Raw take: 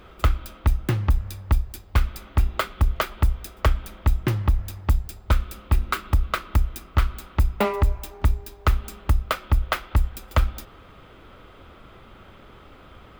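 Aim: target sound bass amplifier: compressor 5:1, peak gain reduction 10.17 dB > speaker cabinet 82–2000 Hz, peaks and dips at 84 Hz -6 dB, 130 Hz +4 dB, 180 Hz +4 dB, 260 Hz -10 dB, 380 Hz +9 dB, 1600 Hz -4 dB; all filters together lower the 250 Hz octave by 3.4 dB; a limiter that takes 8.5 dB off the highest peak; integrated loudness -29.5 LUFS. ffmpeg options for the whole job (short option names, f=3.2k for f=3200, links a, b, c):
-af "equalizer=f=250:t=o:g=-8,alimiter=limit=-14dB:level=0:latency=1,acompressor=threshold=-28dB:ratio=5,highpass=f=82:w=0.5412,highpass=f=82:w=1.3066,equalizer=f=84:t=q:w=4:g=-6,equalizer=f=130:t=q:w=4:g=4,equalizer=f=180:t=q:w=4:g=4,equalizer=f=260:t=q:w=4:g=-10,equalizer=f=380:t=q:w=4:g=9,equalizer=f=1.6k:t=q:w=4:g=-4,lowpass=f=2k:w=0.5412,lowpass=f=2k:w=1.3066,volume=9dB"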